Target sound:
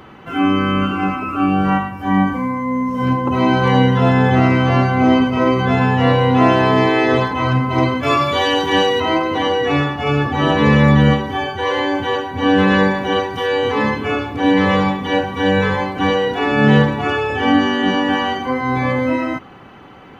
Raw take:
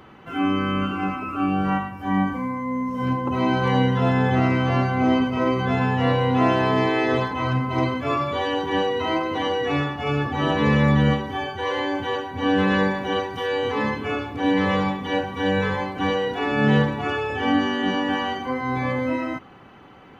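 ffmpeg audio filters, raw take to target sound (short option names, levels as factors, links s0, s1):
-filter_complex "[0:a]asettb=1/sr,asplit=3[s0][s1][s2];[s0]atrim=end=8.034[s3];[s1]atrim=start=8.03:end=9,asetpts=PTS-STARTPTS,afade=t=in:d=0.004:c=qsin,afade=t=out:st=0.966:d=0.004:c=qsin,highshelf=f=2700:g=10.5[s4];[s2]atrim=start=8.996[s5];[s3][s4]acrossfade=d=0.004:c1=hsin:c2=qsin[s6];[s6][s5]acrossfade=d=0.004:c1=qsin:c2=hsin,volume=2.11"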